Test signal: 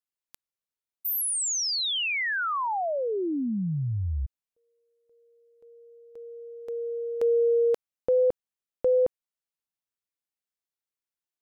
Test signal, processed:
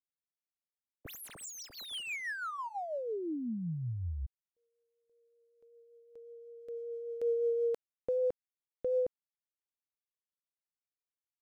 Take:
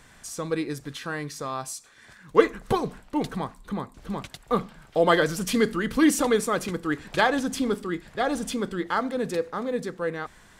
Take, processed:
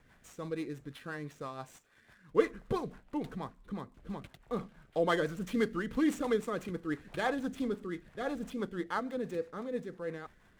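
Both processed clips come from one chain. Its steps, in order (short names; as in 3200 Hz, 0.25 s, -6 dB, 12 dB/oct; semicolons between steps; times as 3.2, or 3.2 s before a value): median filter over 9 samples; rotary speaker horn 6 Hz; gain -7 dB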